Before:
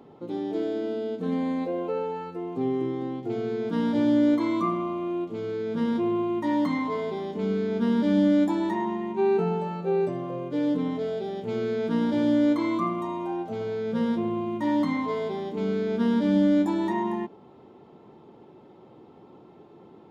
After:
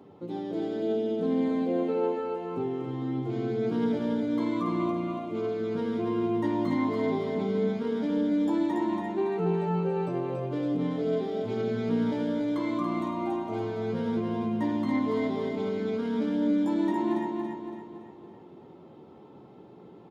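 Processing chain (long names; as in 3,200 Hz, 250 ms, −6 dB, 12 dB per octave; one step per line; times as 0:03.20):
high-pass filter 86 Hz
low-shelf EQ 150 Hz +7 dB
brickwall limiter −20 dBFS, peak gain reduction 9 dB
flanger 0.22 Hz, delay 10 ms, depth 9.1 ms, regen +42%
repeating echo 282 ms, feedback 46%, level −4 dB
level +1.5 dB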